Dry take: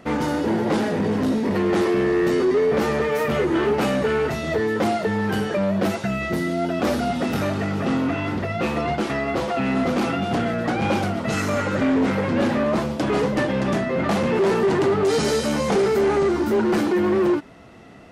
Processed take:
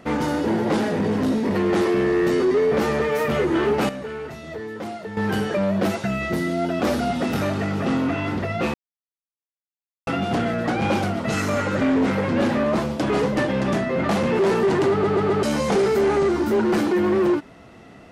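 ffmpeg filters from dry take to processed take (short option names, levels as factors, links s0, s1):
-filter_complex "[0:a]asplit=9[s0][s1][s2][s3][s4][s5][s6][s7][s8];[s0]atrim=end=3.892[s9];[s1]atrim=start=3.888:end=5.172,asetpts=PTS-STARTPTS,volume=0.299[s10];[s2]atrim=start=5.168:end=8.74,asetpts=PTS-STARTPTS,afade=t=out:st=3.568:d=0.004:c=hsin[s11];[s3]atrim=start=8.74:end=10.07,asetpts=PTS-STARTPTS,volume=0[s12];[s4]atrim=start=10.07:end=15.042,asetpts=PTS-STARTPTS,afade=t=in:d=0.004:c=hsin[s13];[s5]atrim=start=14.908:end=15.042[s14];[s6]atrim=start=14.908:end=15.042[s15];[s7]atrim=start=14.908:end=15.042[s16];[s8]atrim=start=15.428[s17];[s9][s10]acrossfade=d=0.004:c1=hsin:c2=hsin[s18];[s11][s12][s13]concat=n=3:v=0:a=1[s19];[s18][s19]acrossfade=d=0.004:c1=hsin:c2=hsin[s20];[s20][s14]acrossfade=d=0.004:c1=hsin:c2=hsin[s21];[s21][s15]acrossfade=d=0.004:c1=hsin:c2=hsin[s22];[s22][s16]acrossfade=d=0.004:c1=hsin:c2=hsin[s23];[s23][s17]acrossfade=d=0.004:c1=hsin:c2=hsin"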